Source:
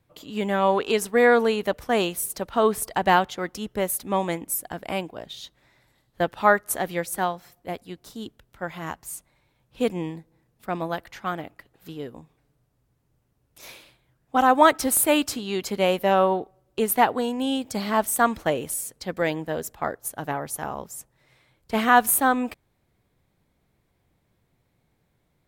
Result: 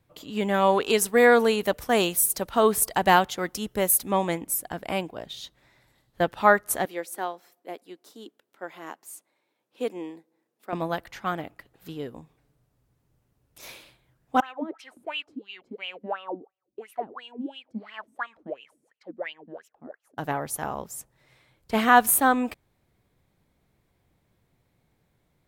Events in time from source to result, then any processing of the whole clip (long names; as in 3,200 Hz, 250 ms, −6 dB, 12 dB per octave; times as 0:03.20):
0:00.54–0:04.11: high-shelf EQ 6,000 Hz +8.5 dB
0:06.85–0:10.73: four-pole ladder high-pass 250 Hz, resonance 30%
0:14.40–0:20.18: LFO wah 2.9 Hz 220–3,000 Hz, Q 7.9